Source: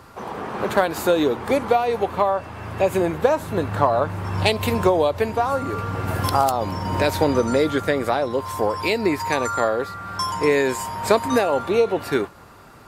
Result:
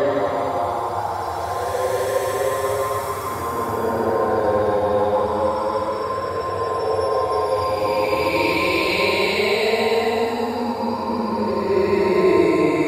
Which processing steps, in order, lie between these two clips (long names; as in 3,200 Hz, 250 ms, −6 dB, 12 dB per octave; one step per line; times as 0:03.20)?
echo through a band-pass that steps 154 ms, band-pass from 540 Hz, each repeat 0.7 octaves, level −1 dB
extreme stretch with random phases 18×, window 0.10 s, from 0:08.39